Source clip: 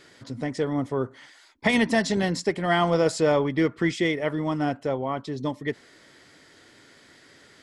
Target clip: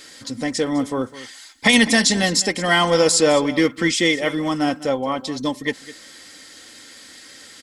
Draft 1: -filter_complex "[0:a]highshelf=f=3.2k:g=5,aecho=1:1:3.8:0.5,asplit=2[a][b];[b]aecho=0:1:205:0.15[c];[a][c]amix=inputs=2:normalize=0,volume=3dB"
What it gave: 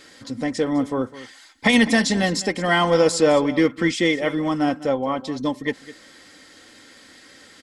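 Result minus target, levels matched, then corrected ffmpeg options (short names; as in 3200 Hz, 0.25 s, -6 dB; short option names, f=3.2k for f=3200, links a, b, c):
8000 Hz band -6.5 dB
-filter_complex "[0:a]highshelf=f=3.2k:g=15.5,aecho=1:1:3.8:0.5,asplit=2[a][b];[b]aecho=0:1:205:0.15[c];[a][c]amix=inputs=2:normalize=0,volume=3dB"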